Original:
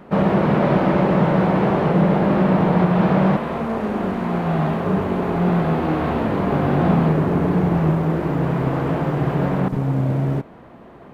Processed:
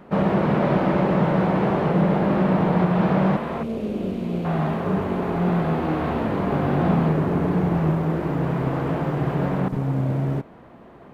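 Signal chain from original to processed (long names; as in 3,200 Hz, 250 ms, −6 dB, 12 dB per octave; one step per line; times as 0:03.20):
0:03.63–0:04.45: flat-topped bell 1,200 Hz −14 dB
level −3 dB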